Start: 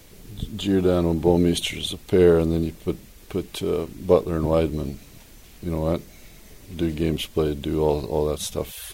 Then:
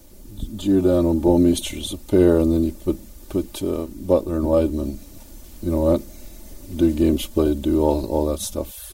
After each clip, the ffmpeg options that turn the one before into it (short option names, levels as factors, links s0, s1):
-af "dynaudnorm=f=280:g=5:m=1.78,equalizer=f=2300:w=0.7:g=-10.5,aecho=1:1:3.4:0.68"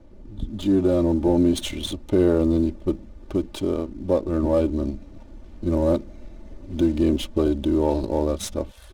-filter_complex "[0:a]asplit=2[s0][s1];[s1]alimiter=limit=0.2:level=0:latency=1:release=132,volume=1.26[s2];[s0][s2]amix=inputs=2:normalize=0,adynamicsmooth=sensitivity=5:basefreq=1600,volume=0.447"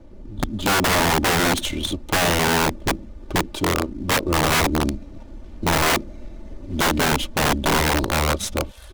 -af "aeval=exprs='(mod(7.5*val(0)+1,2)-1)/7.5':c=same,volume=1.58"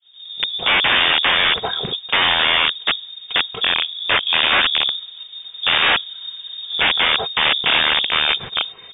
-af "crystalizer=i=4:c=0,agate=range=0.0224:threshold=0.0178:ratio=3:detection=peak,lowpass=f=3100:t=q:w=0.5098,lowpass=f=3100:t=q:w=0.6013,lowpass=f=3100:t=q:w=0.9,lowpass=f=3100:t=q:w=2.563,afreqshift=-3700,volume=1.19"